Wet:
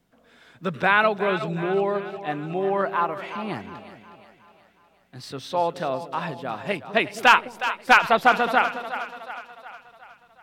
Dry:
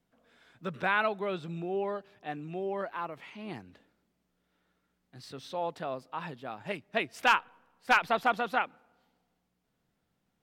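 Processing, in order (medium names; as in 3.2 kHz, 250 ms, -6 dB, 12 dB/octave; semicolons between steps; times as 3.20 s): two-band feedback delay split 530 Hz, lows 209 ms, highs 364 ms, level -11 dB; 2.38–5.63 s: dynamic bell 1.1 kHz, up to +5 dB, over -50 dBFS, Q 1.3; trim +9 dB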